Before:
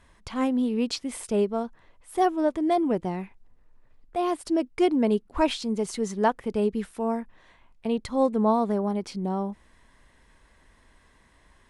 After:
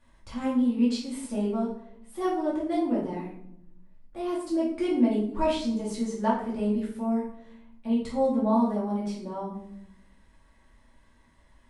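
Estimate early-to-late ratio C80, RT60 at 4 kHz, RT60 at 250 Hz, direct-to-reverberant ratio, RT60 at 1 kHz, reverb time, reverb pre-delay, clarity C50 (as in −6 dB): 8.5 dB, 0.50 s, 1.2 s, −7.5 dB, 0.60 s, 0.75 s, 3 ms, 4.5 dB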